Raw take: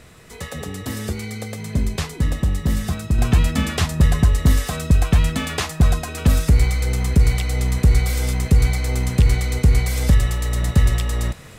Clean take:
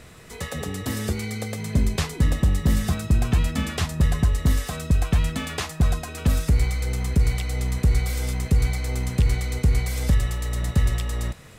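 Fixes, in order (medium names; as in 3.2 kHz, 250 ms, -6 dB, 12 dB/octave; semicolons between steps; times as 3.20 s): gain correction -5 dB, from 3.18 s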